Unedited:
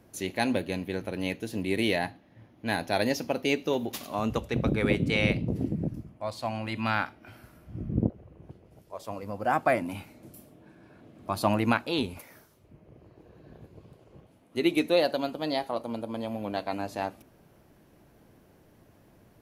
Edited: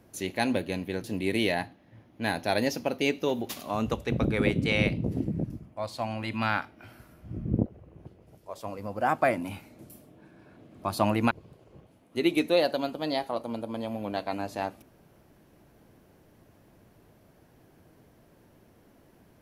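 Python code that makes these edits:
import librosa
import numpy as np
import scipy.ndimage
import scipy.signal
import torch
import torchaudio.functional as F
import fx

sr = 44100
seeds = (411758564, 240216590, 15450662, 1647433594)

y = fx.edit(x, sr, fx.cut(start_s=1.04, length_s=0.44),
    fx.cut(start_s=11.75, length_s=1.96), tone=tone)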